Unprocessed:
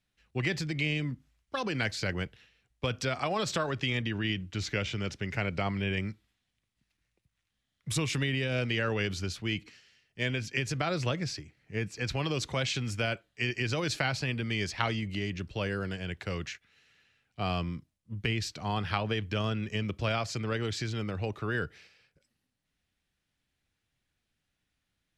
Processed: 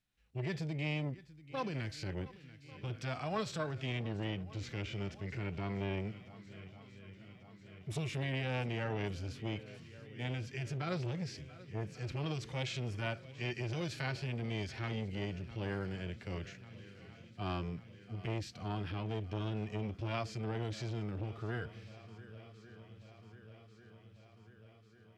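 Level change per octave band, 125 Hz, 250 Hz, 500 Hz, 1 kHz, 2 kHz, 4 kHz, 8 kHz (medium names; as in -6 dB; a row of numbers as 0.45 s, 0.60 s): -4.5 dB, -6.0 dB, -6.5 dB, -8.0 dB, -10.5 dB, -11.0 dB, -13.0 dB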